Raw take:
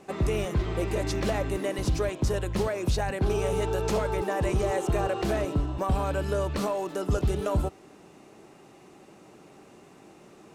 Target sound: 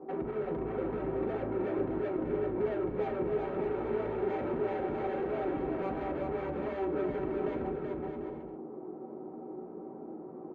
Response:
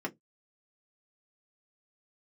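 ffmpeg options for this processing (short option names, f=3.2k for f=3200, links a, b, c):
-filter_complex "[0:a]lowpass=f=1k:w=0.5412,lowpass=f=1k:w=1.3066,equalizer=f=68:t=o:w=0.56:g=-5.5,bandreject=f=50:t=h:w=6,bandreject=f=100:t=h:w=6,bandreject=f=150:t=h:w=6,bandreject=f=200:t=h:w=6,bandreject=f=250:t=h:w=6,bandreject=f=300:t=h:w=6,bandreject=f=350:t=h:w=6,bandreject=f=400:t=h:w=6,bandreject=f=450:t=h:w=6,alimiter=level_in=2.5dB:limit=-24dB:level=0:latency=1:release=12,volume=-2.5dB,asoftclip=type=tanh:threshold=-38.5dB,asplit=2[a][b];[b]adelay=38,volume=-12dB[c];[a][c]amix=inputs=2:normalize=0,aecho=1:1:380|608|744.8|826.9|876.1:0.631|0.398|0.251|0.158|0.1[d];[1:a]atrim=start_sample=2205,asetrate=52920,aresample=44100[e];[d][e]afir=irnorm=-1:irlink=0"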